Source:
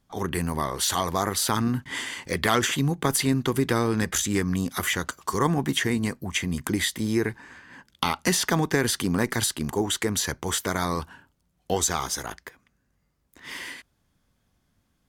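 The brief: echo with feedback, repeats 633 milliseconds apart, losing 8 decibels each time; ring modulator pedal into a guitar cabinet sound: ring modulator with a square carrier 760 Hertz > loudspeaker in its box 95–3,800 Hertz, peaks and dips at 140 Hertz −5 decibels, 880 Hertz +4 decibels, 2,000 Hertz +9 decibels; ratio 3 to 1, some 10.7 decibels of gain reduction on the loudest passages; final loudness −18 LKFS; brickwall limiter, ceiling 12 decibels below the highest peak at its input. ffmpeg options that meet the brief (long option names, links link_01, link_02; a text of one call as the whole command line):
ffmpeg -i in.wav -af "acompressor=threshold=-33dB:ratio=3,alimiter=level_in=1dB:limit=-24dB:level=0:latency=1,volume=-1dB,aecho=1:1:633|1266|1899|2532|3165:0.398|0.159|0.0637|0.0255|0.0102,aeval=exprs='val(0)*sgn(sin(2*PI*760*n/s))':channel_layout=same,highpass=95,equalizer=frequency=140:width_type=q:width=4:gain=-5,equalizer=frequency=880:width_type=q:width=4:gain=4,equalizer=frequency=2000:width_type=q:width=4:gain=9,lowpass=frequency=3800:width=0.5412,lowpass=frequency=3800:width=1.3066,volume=16dB" out.wav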